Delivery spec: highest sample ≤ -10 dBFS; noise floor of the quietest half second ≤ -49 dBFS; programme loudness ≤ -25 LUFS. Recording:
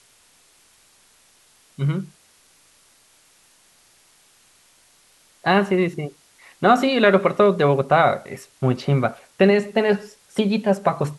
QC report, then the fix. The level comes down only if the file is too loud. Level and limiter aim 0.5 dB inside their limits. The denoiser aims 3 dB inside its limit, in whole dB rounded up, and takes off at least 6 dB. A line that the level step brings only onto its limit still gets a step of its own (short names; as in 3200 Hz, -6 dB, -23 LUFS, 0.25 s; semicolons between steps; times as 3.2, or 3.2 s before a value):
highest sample -4.0 dBFS: fail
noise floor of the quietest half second -57 dBFS: OK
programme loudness -20.0 LUFS: fail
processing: gain -5.5 dB; limiter -10.5 dBFS